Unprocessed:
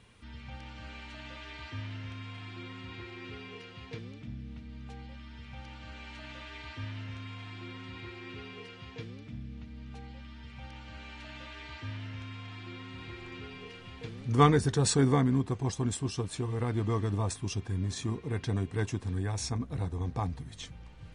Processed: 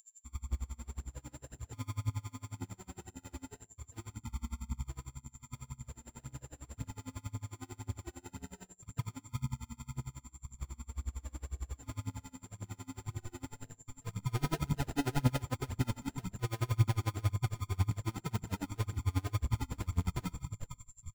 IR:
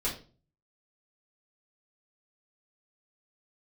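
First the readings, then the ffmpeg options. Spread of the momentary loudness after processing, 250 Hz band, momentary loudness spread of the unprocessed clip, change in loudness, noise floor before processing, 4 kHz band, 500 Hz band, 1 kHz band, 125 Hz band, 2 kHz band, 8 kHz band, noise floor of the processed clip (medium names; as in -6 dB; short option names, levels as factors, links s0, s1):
15 LU, -7.5 dB, 19 LU, -5.5 dB, -49 dBFS, -8.0 dB, -12.5 dB, -8.0 dB, -3.0 dB, -6.5 dB, -6.0 dB, -69 dBFS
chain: -filter_complex "[0:a]anlmdn=0.0251,agate=range=0.00224:threshold=0.00447:ratio=16:detection=peak,bass=f=250:g=13,treble=f=4000:g=-8,bandreject=f=50:t=h:w=6,bandreject=f=100:t=h:w=6,bandreject=f=150:t=h:w=6,bandreject=f=200:t=h:w=6,bandreject=f=250:t=h:w=6,bandreject=f=300:t=h:w=6,flanger=delay=2.7:depth=5.6:regen=-10:speed=0.26:shape=sinusoidal,acrusher=samples=39:mix=1:aa=0.000001,aeval=exprs='val(0)+0.00282*sin(2*PI*7300*n/s)':c=same,asoftclip=type=tanh:threshold=0.0668,aphaser=in_gain=1:out_gain=1:delay=4.1:decay=0.51:speed=1.9:type=triangular,asplit=2[s0][s1];[s1]adelay=108,lowpass=f=1000:p=1,volume=0.224,asplit=2[s2][s3];[s3]adelay=108,lowpass=f=1000:p=1,volume=0.25,asplit=2[s4][s5];[s5]adelay=108,lowpass=f=1000:p=1,volume=0.25[s6];[s2][s4][s6]amix=inputs=3:normalize=0[s7];[s0][s7]amix=inputs=2:normalize=0,aeval=exprs='val(0)*pow(10,-29*(0.5-0.5*cos(2*PI*11*n/s))/20)':c=same"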